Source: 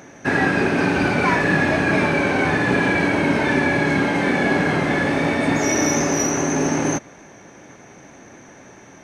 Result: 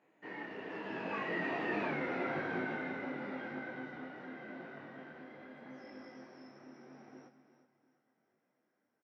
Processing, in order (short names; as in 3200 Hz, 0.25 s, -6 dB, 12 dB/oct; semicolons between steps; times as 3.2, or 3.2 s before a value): Doppler pass-by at 1.88, 36 m/s, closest 3 m; HPF 230 Hz 12 dB/oct; high shelf 8300 Hz +11 dB; compressor 8:1, threshold -33 dBFS, peak gain reduction 15.5 dB; air absorption 300 m; doubler 27 ms -12 dB; feedback echo 0.352 s, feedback 34%, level -11 dB; detuned doubles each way 29 cents; gain +5 dB